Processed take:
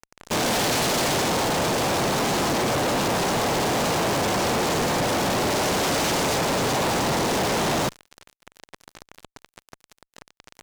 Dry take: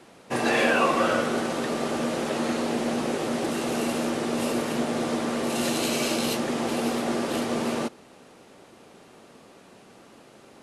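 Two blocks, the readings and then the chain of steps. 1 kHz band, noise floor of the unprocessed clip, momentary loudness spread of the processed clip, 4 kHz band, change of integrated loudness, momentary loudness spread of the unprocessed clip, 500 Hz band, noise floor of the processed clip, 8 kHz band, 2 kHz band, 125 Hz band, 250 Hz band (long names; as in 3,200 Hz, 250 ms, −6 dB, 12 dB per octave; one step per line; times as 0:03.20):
+5.5 dB, −52 dBFS, 1 LU, +7.0 dB, +3.5 dB, 6 LU, +2.5 dB, below −85 dBFS, +8.0 dB, +3.0 dB, +8.5 dB, −0.5 dB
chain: cochlear-implant simulation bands 2
high-frequency loss of the air 58 metres
fuzz pedal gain 47 dB, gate −43 dBFS
level −8.5 dB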